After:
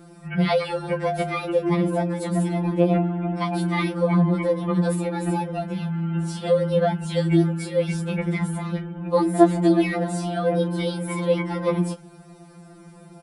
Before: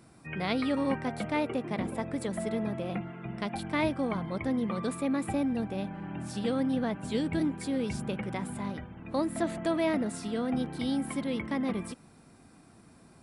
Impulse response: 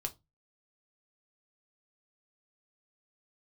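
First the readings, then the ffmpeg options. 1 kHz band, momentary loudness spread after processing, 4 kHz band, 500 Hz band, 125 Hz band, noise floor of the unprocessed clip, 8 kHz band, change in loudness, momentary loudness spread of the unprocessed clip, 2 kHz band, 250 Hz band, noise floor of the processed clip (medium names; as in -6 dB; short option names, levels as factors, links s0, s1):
+9.0 dB, 7 LU, +6.0 dB, +11.0 dB, +14.5 dB, -57 dBFS, +6.0 dB, +9.0 dB, 8 LU, +6.0 dB, +7.0 dB, -47 dBFS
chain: -filter_complex "[0:a]acrossover=split=120|1000|2500[s0][s1][s2][s3];[s1]acontrast=50[s4];[s3]asplit=2[s5][s6];[s6]adelay=31,volume=0.237[s7];[s5][s7]amix=inputs=2:normalize=0[s8];[s0][s4][s2][s8]amix=inputs=4:normalize=0,afftfilt=real='re*2.83*eq(mod(b,8),0)':imag='im*2.83*eq(mod(b,8),0)':win_size=2048:overlap=0.75,volume=2.51"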